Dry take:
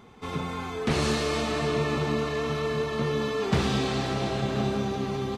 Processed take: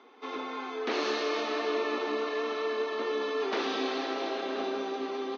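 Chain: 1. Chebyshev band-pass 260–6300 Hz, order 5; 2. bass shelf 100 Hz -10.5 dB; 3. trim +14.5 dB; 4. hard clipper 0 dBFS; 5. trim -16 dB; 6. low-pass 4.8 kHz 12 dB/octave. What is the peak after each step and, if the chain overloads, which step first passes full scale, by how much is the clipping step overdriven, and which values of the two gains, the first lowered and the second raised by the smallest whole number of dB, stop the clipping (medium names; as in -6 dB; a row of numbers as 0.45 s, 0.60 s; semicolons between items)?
-16.5 dBFS, -16.5 dBFS, -2.0 dBFS, -2.0 dBFS, -18.0 dBFS, -18.5 dBFS; nothing clips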